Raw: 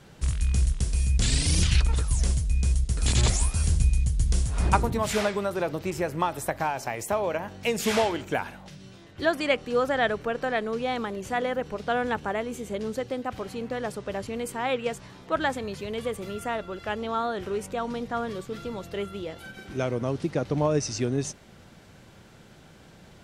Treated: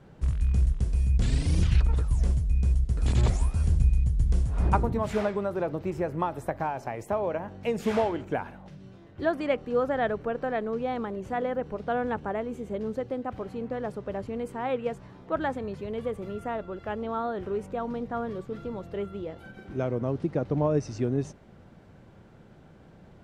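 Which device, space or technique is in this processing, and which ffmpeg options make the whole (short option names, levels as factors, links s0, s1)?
through cloth: -af "highshelf=f=2200:g=-17.5"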